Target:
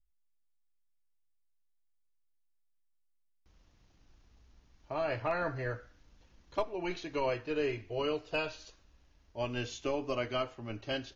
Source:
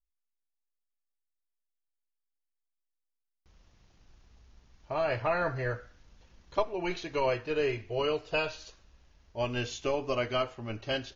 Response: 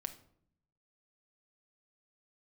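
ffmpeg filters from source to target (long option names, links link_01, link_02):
-filter_complex "[0:a]equalizer=frequency=290:width_type=o:width=0.27:gain=6,acrossover=split=150|3100[link_01][link_02][link_03];[link_01]acompressor=mode=upward:threshold=-59dB:ratio=2.5[link_04];[link_04][link_02][link_03]amix=inputs=3:normalize=0,asoftclip=type=hard:threshold=-18dB,volume=-4dB"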